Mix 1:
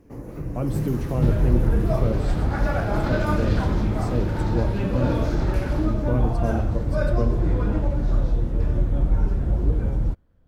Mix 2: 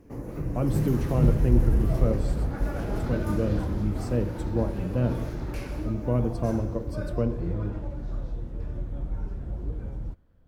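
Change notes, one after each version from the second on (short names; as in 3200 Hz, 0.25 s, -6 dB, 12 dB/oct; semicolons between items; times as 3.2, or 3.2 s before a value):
second sound -11.5 dB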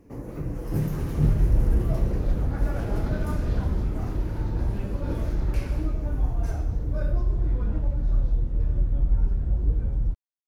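speech: muted; second sound: add low shelf 120 Hz +11.5 dB; reverb: off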